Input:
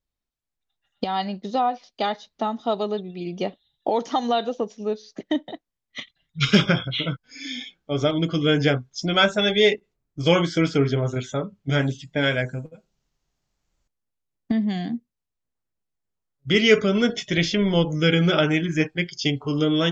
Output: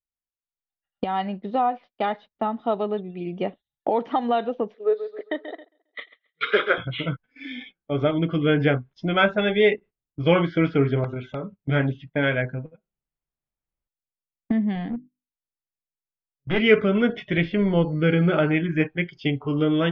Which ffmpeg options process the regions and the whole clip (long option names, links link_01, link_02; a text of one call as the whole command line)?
ffmpeg -i in.wav -filter_complex "[0:a]asettb=1/sr,asplit=3[link_01][link_02][link_03];[link_01]atrim=end=4.744[link_04];[link_02]atrim=start=4.74:end=6.78,asetpts=PTS-STARTPTS,afade=type=in:duration=0.004:curve=qsin,afade=type=out:start_time=2.036:duration=0.004:curve=qsin,highpass=frequency=400:width=0.5412,highpass=frequency=400:width=1.3066,equalizer=frequency=450:width_type=q:width=4:gain=9,equalizer=frequency=860:width_type=q:width=4:gain=-6,equalizer=frequency=1300:width_type=q:width=4:gain=4,equalizer=frequency=1800:width_type=q:width=4:gain=5,equalizer=frequency=2700:width_type=q:width=4:gain=-9,equalizer=frequency=3800:width_type=q:width=4:gain=6,lowpass=frequency=4500:width=0.5412,lowpass=frequency=4500:width=1.3066,aecho=1:1:135|270|405|540:0.282|0.116|0.0474|0.0194,atrim=end_sample=89964[link_05];[link_03]atrim=start=6.776[link_06];[link_04][link_05]acrossfade=duration=0.004:curve1=hsin:curve2=qsin[link_07];[link_07][link_06]acrossfade=duration=0.004:curve1=qsin:curve2=hsin,asettb=1/sr,asplit=3[link_08][link_09][link_10];[link_08]atrim=end=11.044[link_11];[link_09]atrim=start=11.04:end=11.57,asetpts=PTS-STARTPTS,afade=type=in:duration=0.004:curve=qsin,afade=type=out:start_time=0.526:duration=0.004:curve=qsin,acompressor=threshold=-26dB:ratio=4:attack=3.2:release=140:knee=1:detection=peak,aeval=exprs='(mod(10.6*val(0)+1,2)-1)/10.6':channel_layout=same,asuperstop=centerf=1800:order=20:qfactor=5.9[link_12];[link_10]atrim=start=11.566[link_13];[link_11][link_12]acrossfade=duration=0.004:curve1=hsin:curve2=qsin[link_14];[link_14][link_13]acrossfade=duration=0.004:curve1=qsin:curve2=hsin,asettb=1/sr,asplit=3[link_15][link_16][link_17];[link_15]atrim=end=14.754[link_18];[link_16]atrim=start=14.75:end=16.6,asetpts=PTS-STARTPTS,afade=type=in:duration=0.004:curve=qsin,afade=type=out:start_time=1.846:duration=0.004:curve=qsin,aeval=exprs='clip(val(0),-1,0.0501)':channel_layout=same,bandreject=frequency=50:width_type=h:width=6,bandreject=frequency=100:width_type=h:width=6,bandreject=frequency=150:width_type=h:width=6,bandreject=frequency=200:width_type=h:width=6,bandreject=frequency=250:width_type=h:width=6,bandreject=frequency=300:width_type=h:width=6,bandreject=frequency=350:width_type=h:width=6,bandreject=frequency=400:width_type=h:width=6[link_19];[link_17]atrim=start=16.596[link_20];[link_18][link_19]acrossfade=duration=0.004:curve1=hsin:curve2=qsin[link_21];[link_21][link_20]acrossfade=duration=0.004:curve1=qsin:curve2=hsin,asettb=1/sr,asplit=3[link_22][link_23][link_24];[link_22]atrim=end=17.424[link_25];[link_23]atrim=start=17.42:end=18.51,asetpts=PTS-STARTPTS,afade=type=in:duration=0.004:curve=qsin,afade=type=out:start_time=1.086:duration=0.004:curve=qsin,highshelf=frequency=2900:gain=-9.5,aeval=exprs='val(0)+0.00316*sin(2*PI*4400*n/s)':channel_layout=same[link_26];[link_24]atrim=start=18.506[link_27];[link_25][link_26]acrossfade=duration=0.004:curve1=hsin:curve2=qsin[link_28];[link_28][link_27]acrossfade=duration=0.004:curve1=qsin:curve2=hsin,agate=range=-16dB:threshold=-40dB:ratio=16:detection=peak,lowpass=frequency=2700:width=0.5412,lowpass=frequency=2700:width=1.3066" out.wav